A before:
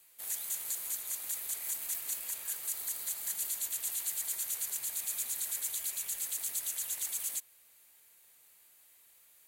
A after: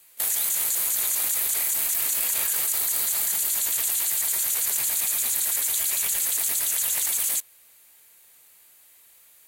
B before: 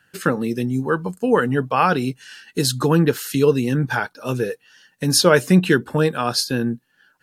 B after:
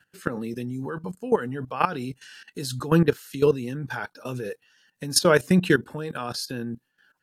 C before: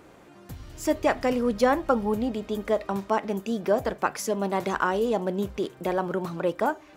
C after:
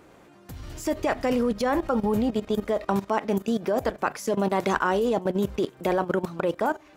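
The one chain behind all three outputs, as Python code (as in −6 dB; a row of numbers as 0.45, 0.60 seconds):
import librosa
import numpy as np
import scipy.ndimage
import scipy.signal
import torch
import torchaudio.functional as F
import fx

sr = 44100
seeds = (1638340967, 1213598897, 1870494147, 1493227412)

y = fx.level_steps(x, sr, step_db=15)
y = y * 10.0 ** (-26 / 20.0) / np.sqrt(np.mean(np.square(y)))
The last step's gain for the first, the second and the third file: +20.5, −1.0, +7.0 decibels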